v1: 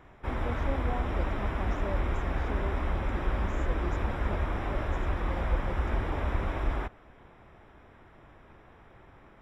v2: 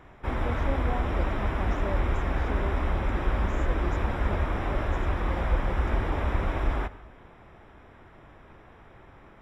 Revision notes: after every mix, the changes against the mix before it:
reverb: on, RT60 0.75 s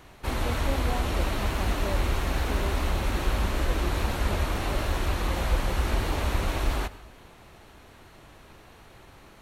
background: remove Savitzky-Golay filter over 25 samples; master: add peaking EQ 2.8 kHz +7.5 dB 0.38 oct

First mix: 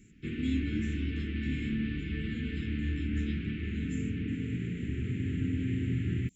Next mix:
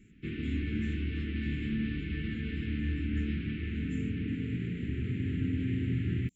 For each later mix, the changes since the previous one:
speech -9.0 dB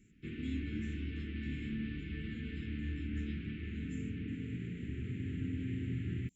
background -6.5 dB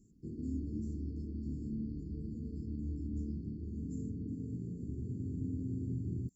master: add brick-wall FIR band-stop 810–4300 Hz

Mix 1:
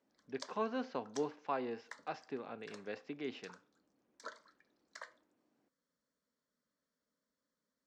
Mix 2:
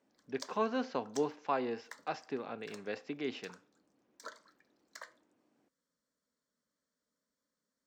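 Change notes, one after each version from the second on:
speech +4.0 dB; master: remove distance through air 59 m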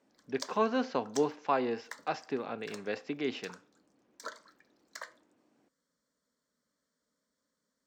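speech +4.0 dB; background +5.0 dB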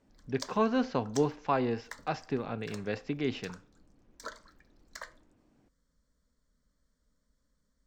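master: remove high-pass 270 Hz 12 dB/octave

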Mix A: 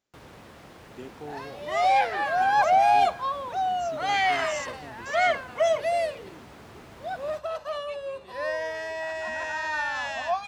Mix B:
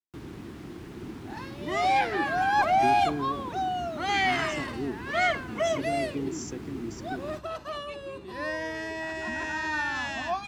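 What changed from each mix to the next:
speech: entry +1.85 s; master: add resonant low shelf 430 Hz +7.5 dB, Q 3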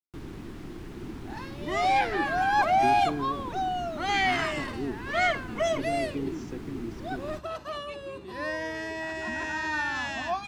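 speech: add distance through air 220 m; first sound: remove high-pass 67 Hz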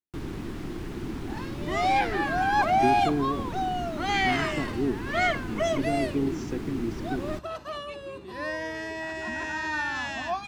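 speech +6.0 dB; first sound +5.5 dB

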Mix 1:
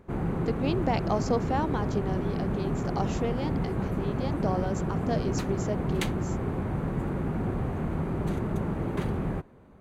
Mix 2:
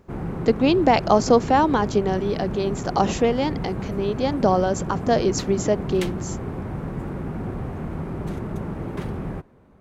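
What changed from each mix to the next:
speech +11.5 dB; background: remove band-stop 5.3 kHz, Q 7.7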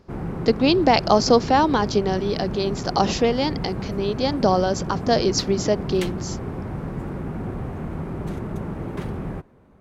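speech: add resonant low-pass 5 kHz, resonance Q 3.1

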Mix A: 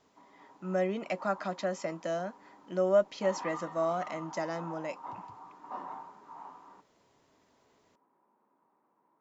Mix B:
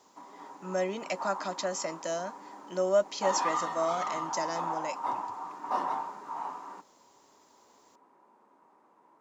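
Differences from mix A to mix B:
background +10.5 dB; master: add tone controls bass -6 dB, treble +14 dB

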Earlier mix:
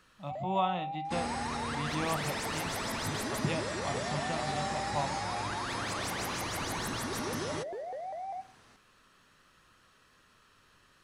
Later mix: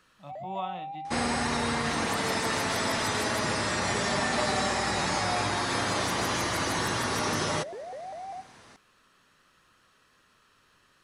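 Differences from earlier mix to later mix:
speech -5.0 dB; second sound +9.0 dB; master: add bass shelf 110 Hz -5.5 dB

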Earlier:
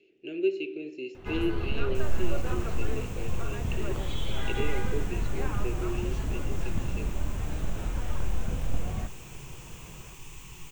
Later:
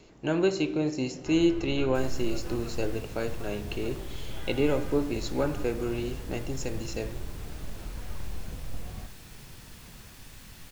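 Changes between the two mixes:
speech: remove two resonant band-passes 1 kHz, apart 2.8 oct; first sound -8.0 dB; second sound: remove rippled EQ curve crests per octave 0.71, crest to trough 12 dB

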